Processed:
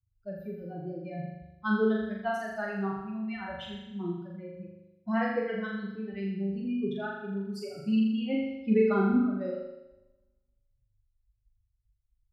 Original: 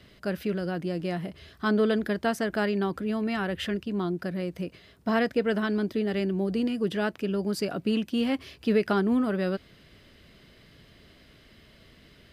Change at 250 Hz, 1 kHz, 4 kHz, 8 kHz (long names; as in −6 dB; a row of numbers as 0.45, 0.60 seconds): −2.5 dB, −3.0 dB, −9.5 dB, below −10 dB